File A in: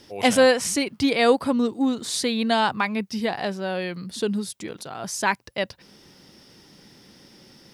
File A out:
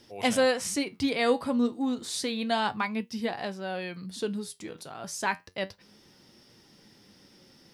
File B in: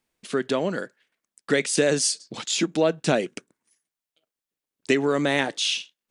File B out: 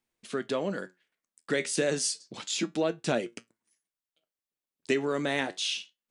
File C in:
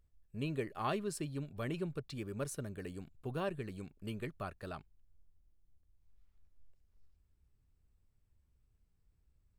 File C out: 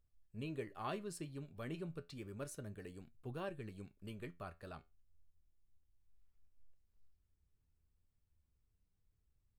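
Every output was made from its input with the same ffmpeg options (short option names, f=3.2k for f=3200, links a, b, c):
-af "flanger=delay=8.5:depth=3.9:regen=70:speed=0.31:shape=sinusoidal,volume=-2dB"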